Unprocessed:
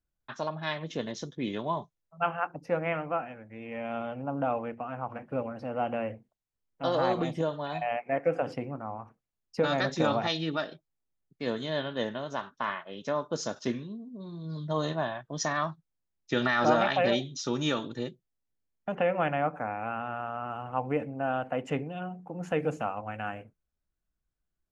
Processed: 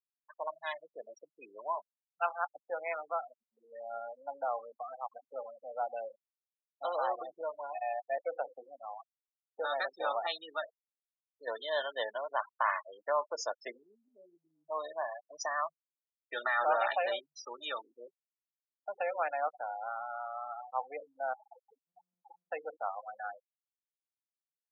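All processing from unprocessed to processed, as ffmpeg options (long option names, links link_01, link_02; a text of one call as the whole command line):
ffmpeg -i in.wav -filter_complex "[0:a]asettb=1/sr,asplit=3[link_01][link_02][link_03];[link_01]atrim=end=11.474[link_04];[link_02]atrim=start=11.47:end=14.37,asetpts=PTS-STARTPTS,afade=type=in:duration=0.004:curve=qsin,afade=type=out:start_time=2.896:duration=0.004:curve=qsin,highpass=frequency=170:poles=1,acontrast=37[link_05];[link_03]atrim=start=14.366[link_06];[link_04][link_05]acrossfade=duration=0.004:curve1=hsin:curve2=qsin[link_07];[link_07][link_06]acrossfade=duration=0.004:curve1=qsin:curve2=hsin,asettb=1/sr,asplit=3[link_08][link_09][link_10];[link_08]atrim=end=21.334[link_11];[link_09]atrim=start=21.33:end=22.5,asetpts=PTS-STARTPTS,afade=type=in:duration=0.004:curve=qsin,afade=type=out:start_time=1.166:duration=0.004:curve=qsin,acompressor=threshold=-41dB:ratio=20:attack=3.2:release=140:knee=1:detection=peak,aeval=exprs='val(0)+0.00501*sin(2*PI*840*n/s)':channel_layout=same[link_12];[link_10]atrim=start=22.496[link_13];[link_11][link_12]acrossfade=duration=0.004:curve1=hsin:curve2=qsin[link_14];[link_14][link_13]acrossfade=duration=0.004:curve1=qsin:curve2=hsin,afftfilt=real='re*gte(hypot(re,im),0.0447)':imag='im*gte(hypot(re,im),0.0447)':win_size=1024:overlap=0.75,highpass=frequency=620:width=0.5412,highpass=frequency=620:width=1.3066,highshelf=frequency=3500:gain=-6.5,volume=-2dB" out.wav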